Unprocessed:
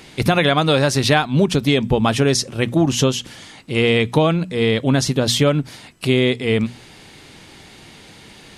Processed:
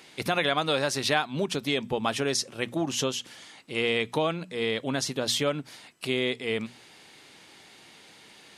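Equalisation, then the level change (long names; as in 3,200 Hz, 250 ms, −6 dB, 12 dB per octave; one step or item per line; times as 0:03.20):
high-pass filter 440 Hz 6 dB per octave
−7.5 dB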